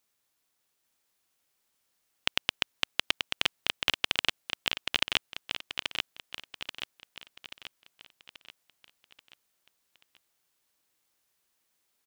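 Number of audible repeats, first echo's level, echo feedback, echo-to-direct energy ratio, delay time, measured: 5, −5.0 dB, 48%, −4.0 dB, 833 ms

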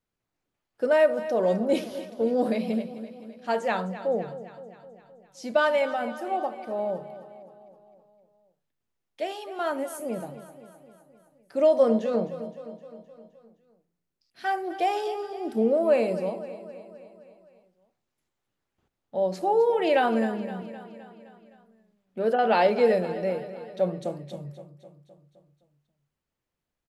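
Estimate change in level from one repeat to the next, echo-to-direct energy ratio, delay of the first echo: −4.5 dB, −12.0 dB, 259 ms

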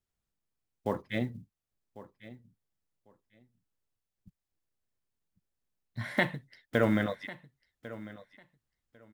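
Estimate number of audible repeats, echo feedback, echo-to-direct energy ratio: 2, 18%, −17.0 dB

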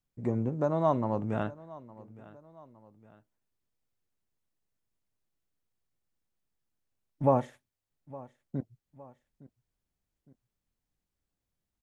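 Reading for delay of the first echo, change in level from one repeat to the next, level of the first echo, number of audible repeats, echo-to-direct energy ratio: 862 ms, −6.5 dB, −20.0 dB, 2, −19.0 dB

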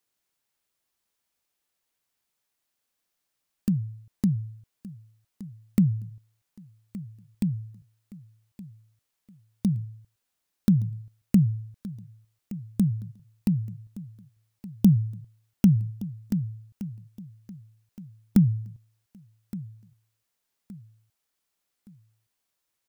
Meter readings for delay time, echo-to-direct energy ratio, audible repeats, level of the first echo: 1,169 ms, −16.5 dB, 3, −17.0 dB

